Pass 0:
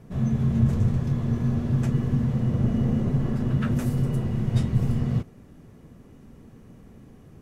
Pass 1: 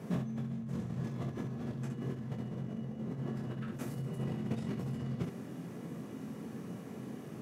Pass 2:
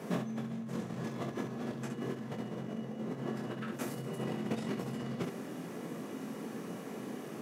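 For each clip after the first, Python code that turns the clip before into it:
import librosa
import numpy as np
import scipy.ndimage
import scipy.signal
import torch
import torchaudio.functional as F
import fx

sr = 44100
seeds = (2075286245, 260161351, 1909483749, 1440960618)

y1 = scipy.signal.sosfilt(scipy.signal.butter(4, 140.0, 'highpass', fs=sr, output='sos'), x)
y1 = fx.over_compress(y1, sr, threshold_db=-36.0, ratio=-1.0)
y1 = fx.room_early_taps(y1, sr, ms=(23, 67), db=(-5.0, -6.5))
y1 = y1 * librosa.db_to_amplitude(-4.0)
y2 = scipy.signal.sosfilt(scipy.signal.bessel(2, 310.0, 'highpass', norm='mag', fs=sr, output='sos'), y1)
y2 = y2 * librosa.db_to_amplitude(6.5)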